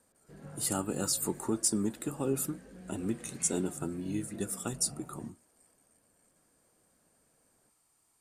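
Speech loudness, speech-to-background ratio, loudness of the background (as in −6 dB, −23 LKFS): −33.0 LKFS, 17.0 dB, −50.0 LKFS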